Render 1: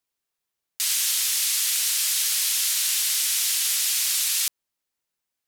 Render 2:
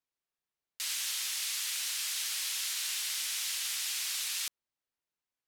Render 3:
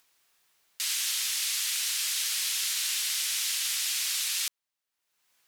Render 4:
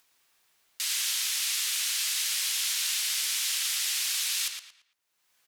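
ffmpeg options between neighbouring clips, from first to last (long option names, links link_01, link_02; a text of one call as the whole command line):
ffmpeg -i in.wav -af "highshelf=frequency=5900:gain=-9.5,volume=-6dB" out.wav
ffmpeg -i in.wav -af "acompressor=mode=upward:threshold=-57dB:ratio=2.5,aeval=exprs='0.0794*(cos(1*acos(clip(val(0)/0.0794,-1,1)))-cos(1*PI/2))+0.000891*(cos(3*acos(clip(val(0)/0.0794,-1,1)))-cos(3*PI/2))':channel_layout=same,tiltshelf=frequency=650:gain=-5.5" out.wav
ffmpeg -i in.wav -filter_complex "[0:a]asplit=2[link_01][link_02];[link_02]adelay=113,lowpass=frequency=4800:poles=1,volume=-5dB,asplit=2[link_03][link_04];[link_04]adelay=113,lowpass=frequency=4800:poles=1,volume=0.34,asplit=2[link_05][link_06];[link_06]adelay=113,lowpass=frequency=4800:poles=1,volume=0.34,asplit=2[link_07][link_08];[link_08]adelay=113,lowpass=frequency=4800:poles=1,volume=0.34[link_09];[link_01][link_03][link_05][link_07][link_09]amix=inputs=5:normalize=0" out.wav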